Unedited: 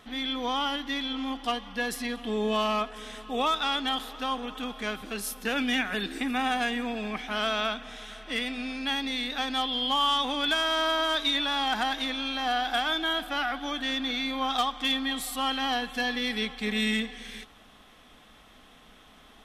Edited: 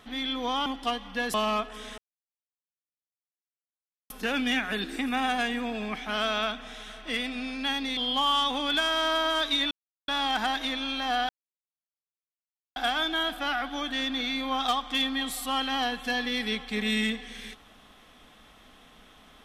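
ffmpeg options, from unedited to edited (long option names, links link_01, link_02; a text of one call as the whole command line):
ffmpeg -i in.wav -filter_complex "[0:a]asplit=8[link_01][link_02][link_03][link_04][link_05][link_06][link_07][link_08];[link_01]atrim=end=0.662[link_09];[link_02]atrim=start=1.268:end=1.952[link_10];[link_03]atrim=start=2.558:end=3.2,asetpts=PTS-STARTPTS,afade=type=out:start_time=0.638:duration=0.004:curve=hsin[link_11];[link_04]atrim=start=3.2:end=5.32,asetpts=PTS-STARTPTS,volume=0[link_12];[link_05]atrim=start=5.32:end=9.192,asetpts=PTS-STARTPTS,afade=type=in:duration=0.004:curve=hsin[link_13];[link_06]atrim=start=9.708:end=11.45,asetpts=PTS-STARTPTS,afade=type=out:start_time=1.738:duration=0.004:curve=hsin,apad=pad_dur=0.37[link_14];[link_07]atrim=start=11.45:end=12.66,asetpts=PTS-STARTPTS,afade=type=in:duration=0.004:curve=hsin,afade=type=out:start_time=1.206:duration=0.004:curve=hsin,apad=pad_dur=1.47[link_15];[link_08]atrim=start=12.66,asetpts=PTS-STARTPTS,afade=type=in:duration=0.004:curve=hsin[link_16];[link_09][link_10]acrossfade=duration=0.004:curve1=hsin:curve2=hsin[link_17];[link_11][link_12][link_13]concat=n=3:v=0:a=1[link_18];[link_17][link_18]acrossfade=duration=0.004:curve1=hsin:curve2=hsin[link_19];[link_14][link_15][link_16]concat=n=3:v=0:a=1[link_20];[link_19][link_20]acrossfade=duration=0.004:curve1=hsin:curve2=hsin" out.wav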